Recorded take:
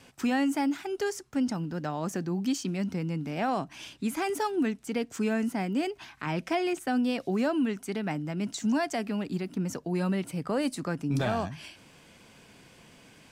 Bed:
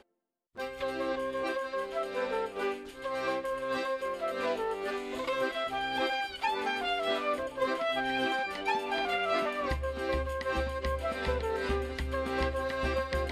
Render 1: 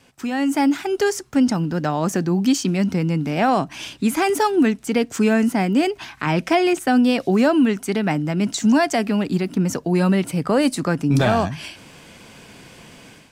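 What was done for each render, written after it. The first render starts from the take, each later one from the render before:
automatic gain control gain up to 11 dB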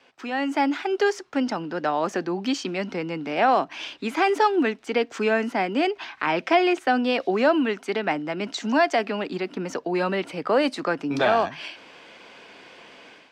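three-way crossover with the lows and the highs turned down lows −22 dB, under 310 Hz, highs −23 dB, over 4,900 Hz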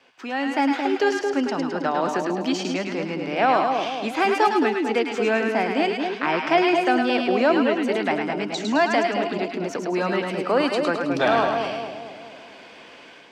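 echo with a time of its own for lows and highs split 830 Hz, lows 222 ms, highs 106 ms, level −4 dB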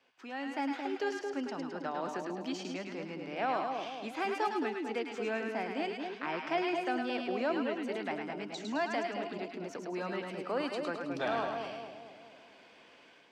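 level −13.5 dB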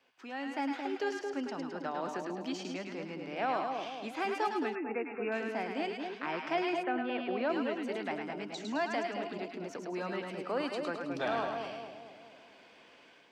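0:04.75–0:05.32: linear-phase brick-wall low-pass 2,800 Hz
0:06.82–0:07.48: low-pass filter 2,500 Hz → 4,200 Hz 24 dB per octave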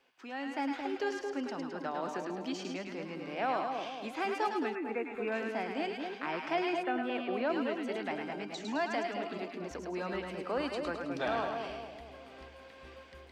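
mix in bed −21.5 dB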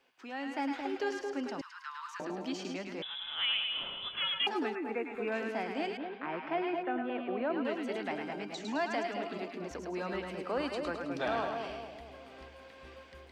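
0:01.61–0:02.20: Butterworth high-pass 970 Hz 96 dB per octave
0:03.02–0:04.47: voice inversion scrambler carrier 3,700 Hz
0:05.97–0:07.65: high-frequency loss of the air 360 metres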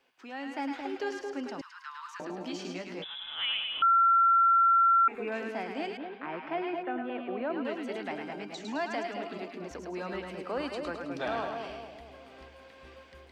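0:02.39–0:03.07: double-tracking delay 17 ms −6 dB
0:03.82–0:05.08: beep over 1,360 Hz −19 dBFS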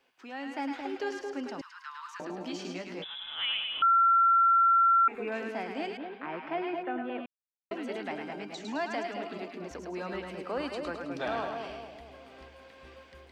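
0:07.26–0:07.71: silence

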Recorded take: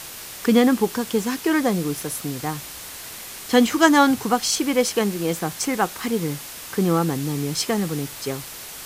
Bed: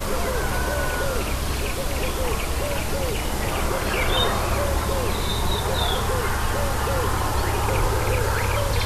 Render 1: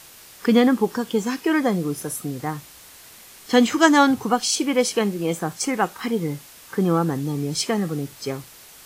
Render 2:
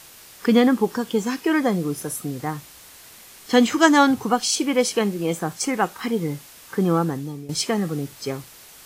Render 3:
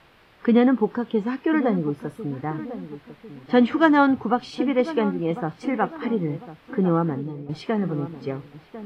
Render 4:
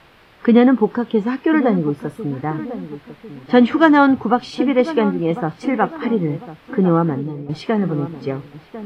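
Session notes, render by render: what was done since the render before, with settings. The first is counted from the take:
noise reduction from a noise print 9 dB
0:07.00–0:07.49: fade out linear, to −15 dB
high-frequency loss of the air 430 metres; feedback echo with a low-pass in the loop 1,049 ms, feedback 44%, low-pass 1,200 Hz, level −13 dB
level +5.5 dB; brickwall limiter −1 dBFS, peak gain reduction 1.5 dB

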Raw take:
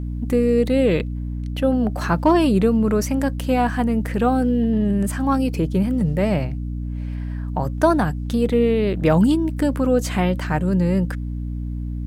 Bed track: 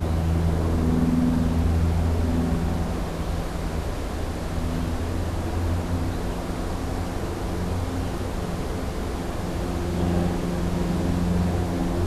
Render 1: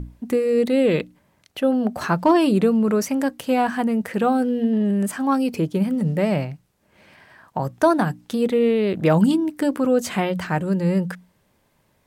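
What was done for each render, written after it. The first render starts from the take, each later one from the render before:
mains-hum notches 60/120/180/240/300 Hz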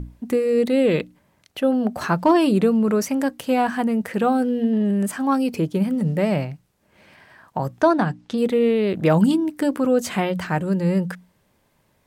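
0:07.81–0:08.38: low-pass filter 5,700 Hz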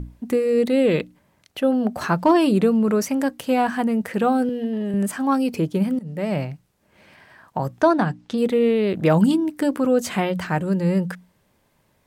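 0:04.49–0:04.94: high-pass filter 360 Hz 6 dB per octave
0:05.99–0:06.46: fade in, from −19.5 dB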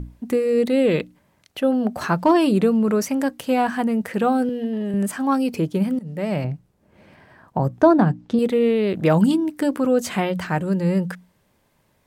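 0:06.44–0:08.39: tilt shelving filter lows +6 dB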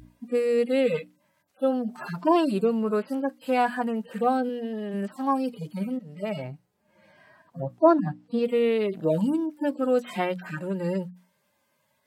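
harmonic-percussive split with one part muted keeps harmonic
high-pass filter 530 Hz 6 dB per octave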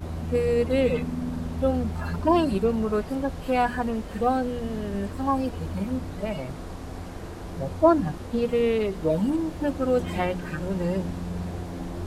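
mix in bed track −9 dB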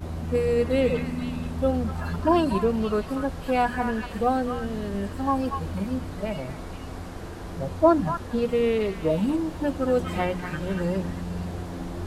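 echo through a band-pass that steps 238 ms, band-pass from 1,400 Hz, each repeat 1.4 octaves, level −3 dB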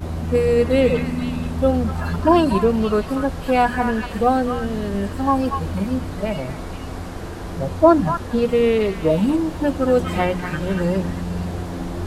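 level +6 dB
brickwall limiter −1 dBFS, peak gain reduction 1 dB

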